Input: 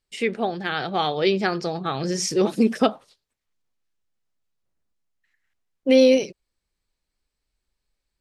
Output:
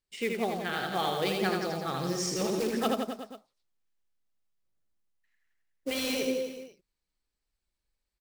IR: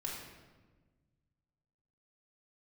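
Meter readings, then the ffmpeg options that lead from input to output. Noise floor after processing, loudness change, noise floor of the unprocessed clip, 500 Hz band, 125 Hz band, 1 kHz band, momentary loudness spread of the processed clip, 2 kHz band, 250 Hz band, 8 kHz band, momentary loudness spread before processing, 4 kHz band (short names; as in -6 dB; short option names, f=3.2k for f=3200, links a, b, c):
under -85 dBFS, -9.0 dB, -82 dBFS, -10.0 dB, -6.0 dB, -6.0 dB, 11 LU, -5.5 dB, -10.0 dB, -4.5 dB, 11 LU, -5.5 dB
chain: -af "acrusher=bits=4:mode=log:mix=0:aa=0.000001,aecho=1:1:80|168|264.8|371.3|488.4:0.631|0.398|0.251|0.158|0.1,afftfilt=real='re*lt(hypot(re,im),1.26)':imag='im*lt(hypot(re,im),1.26)':win_size=1024:overlap=0.75,volume=-8dB"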